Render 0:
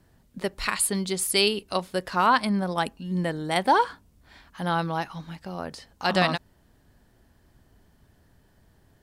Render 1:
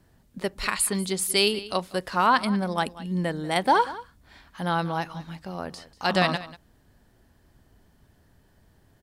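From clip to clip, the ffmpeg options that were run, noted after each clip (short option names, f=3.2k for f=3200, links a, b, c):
-af "aecho=1:1:190:0.133"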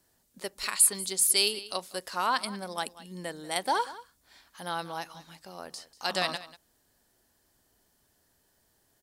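-af "bass=f=250:g=-11,treble=f=4k:g=12,volume=-7.5dB"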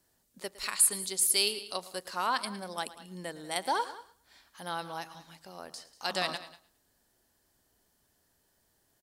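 -af "aecho=1:1:110|220|330:0.141|0.041|0.0119,volume=-2.5dB"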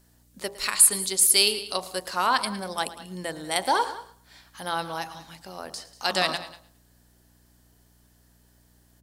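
-af "aeval=exprs='val(0)+0.000501*(sin(2*PI*60*n/s)+sin(2*PI*2*60*n/s)/2+sin(2*PI*3*60*n/s)/3+sin(2*PI*4*60*n/s)/4+sin(2*PI*5*60*n/s)/5)':c=same,bandreject=f=57.38:t=h:w=4,bandreject=f=114.76:t=h:w=4,bandreject=f=172.14:t=h:w=4,bandreject=f=229.52:t=h:w=4,bandreject=f=286.9:t=h:w=4,bandreject=f=344.28:t=h:w=4,bandreject=f=401.66:t=h:w=4,bandreject=f=459.04:t=h:w=4,bandreject=f=516.42:t=h:w=4,bandreject=f=573.8:t=h:w=4,bandreject=f=631.18:t=h:w=4,bandreject=f=688.56:t=h:w=4,bandreject=f=745.94:t=h:w=4,bandreject=f=803.32:t=h:w=4,bandreject=f=860.7:t=h:w=4,bandreject=f=918.08:t=h:w=4,bandreject=f=975.46:t=h:w=4,bandreject=f=1.03284k:t=h:w=4,bandreject=f=1.09022k:t=h:w=4,bandreject=f=1.1476k:t=h:w=4,volume=7.5dB"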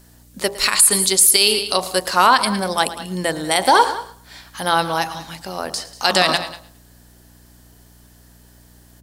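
-af "alimiter=level_in=12.5dB:limit=-1dB:release=50:level=0:latency=1,volume=-1dB"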